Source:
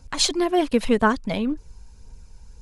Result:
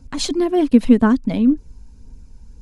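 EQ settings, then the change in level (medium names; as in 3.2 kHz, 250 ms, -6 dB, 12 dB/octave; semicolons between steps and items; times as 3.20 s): peaking EQ 260 Hz +11.5 dB 0.66 oct; bass shelf 340 Hz +7.5 dB; -4.0 dB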